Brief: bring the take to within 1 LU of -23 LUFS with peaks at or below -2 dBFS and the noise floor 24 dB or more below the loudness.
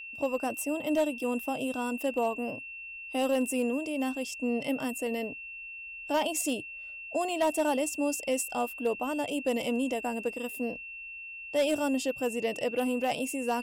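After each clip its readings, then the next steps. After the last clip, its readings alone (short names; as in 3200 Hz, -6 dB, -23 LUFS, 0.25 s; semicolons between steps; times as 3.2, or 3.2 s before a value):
clipped 0.3%; flat tops at -20.5 dBFS; steady tone 2700 Hz; tone level -40 dBFS; loudness -31.0 LUFS; peak -20.5 dBFS; loudness target -23.0 LUFS
-> clip repair -20.5 dBFS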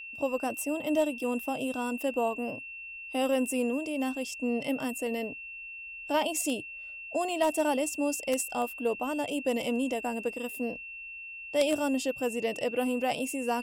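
clipped 0.0%; steady tone 2700 Hz; tone level -40 dBFS
-> notch 2700 Hz, Q 30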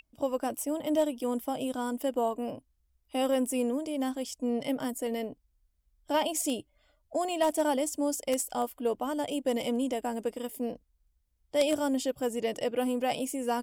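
steady tone none; loudness -31.0 LUFS; peak -11.0 dBFS; loudness target -23.0 LUFS
-> gain +8 dB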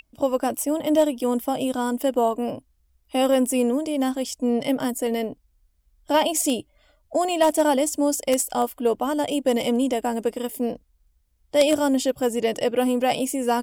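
loudness -23.0 LUFS; peak -3.0 dBFS; noise floor -66 dBFS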